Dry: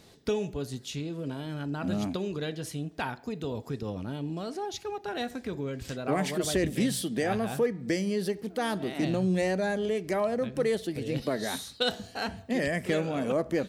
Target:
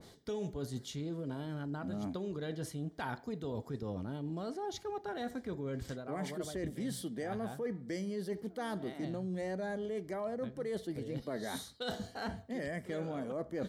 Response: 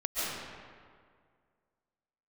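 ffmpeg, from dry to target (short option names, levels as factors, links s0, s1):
-af "bandreject=f=2600:w=5.3,areverse,acompressor=threshold=0.0126:ratio=6,areverse,adynamicequalizer=threshold=0.00126:dfrequency=1900:dqfactor=0.7:tfrequency=1900:tqfactor=0.7:attack=5:release=100:ratio=0.375:range=2.5:mode=cutabove:tftype=highshelf,volume=1.26"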